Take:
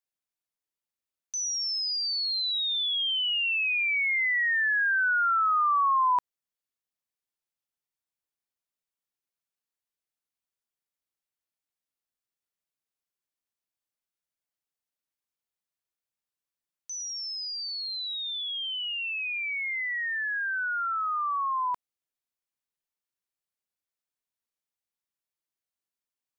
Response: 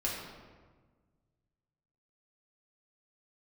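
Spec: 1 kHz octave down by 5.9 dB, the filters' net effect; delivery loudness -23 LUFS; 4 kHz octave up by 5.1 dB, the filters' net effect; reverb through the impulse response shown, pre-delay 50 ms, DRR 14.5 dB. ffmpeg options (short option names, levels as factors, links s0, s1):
-filter_complex "[0:a]equalizer=f=1000:t=o:g=-8,equalizer=f=4000:t=o:g=7,asplit=2[s0][s1];[1:a]atrim=start_sample=2205,adelay=50[s2];[s1][s2]afir=irnorm=-1:irlink=0,volume=0.106[s3];[s0][s3]amix=inputs=2:normalize=0,volume=1.12"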